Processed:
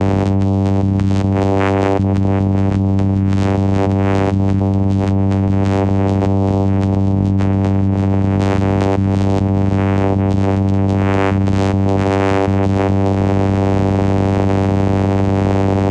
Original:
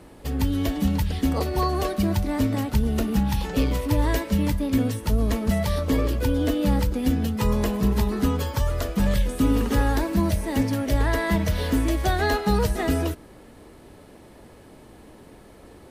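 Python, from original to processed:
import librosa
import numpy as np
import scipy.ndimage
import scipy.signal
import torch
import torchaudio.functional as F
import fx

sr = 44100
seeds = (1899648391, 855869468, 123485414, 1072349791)

y = fx.vocoder(x, sr, bands=4, carrier='saw', carrier_hz=97.3)
y = fx.env_flatten(y, sr, amount_pct=100)
y = F.gain(torch.from_numpy(y), 3.5).numpy()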